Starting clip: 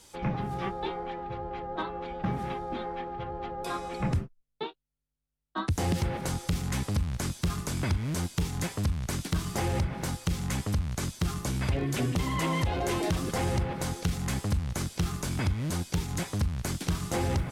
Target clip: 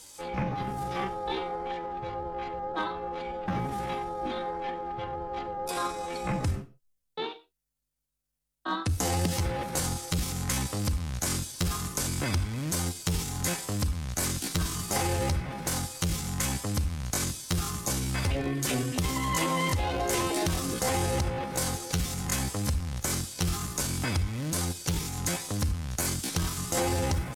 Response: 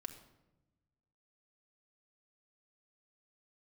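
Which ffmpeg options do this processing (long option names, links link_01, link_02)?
-filter_complex "[0:a]atempo=0.64,asplit=2[link_01][link_02];[link_02]bass=frequency=250:gain=-12,treble=frequency=4000:gain=11[link_03];[1:a]atrim=start_sample=2205,afade=type=out:start_time=0.18:duration=0.01,atrim=end_sample=8379[link_04];[link_03][link_04]afir=irnorm=-1:irlink=0,volume=3dB[link_05];[link_01][link_05]amix=inputs=2:normalize=0,volume=-3dB"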